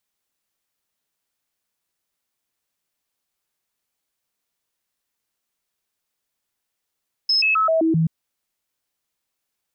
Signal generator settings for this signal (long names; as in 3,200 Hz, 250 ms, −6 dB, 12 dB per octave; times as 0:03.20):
stepped sweep 5,180 Hz down, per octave 1, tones 6, 0.13 s, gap 0.00 s −15 dBFS